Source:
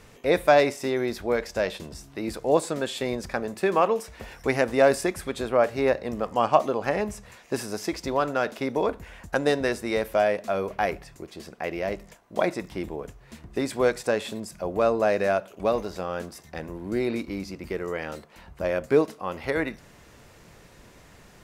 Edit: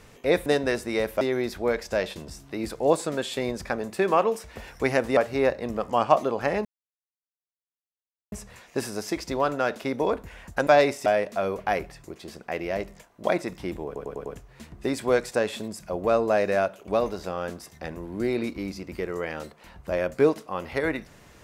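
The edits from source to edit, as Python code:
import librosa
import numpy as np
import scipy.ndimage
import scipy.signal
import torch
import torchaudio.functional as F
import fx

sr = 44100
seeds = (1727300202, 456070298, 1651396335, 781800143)

y = fx.edit(x, sr, fx.swap(start_s=0.46, length_s=0.39, other_s=9.43, other_length_s=0.75),
    fx.cut(start_s=4.81, length_s=0.79),
    fx.insert_silence(at_s=7.08, length_s=1.67),
    fx.stutter(start_s=12.98, slice_s=0.1, count=5), tone=tone)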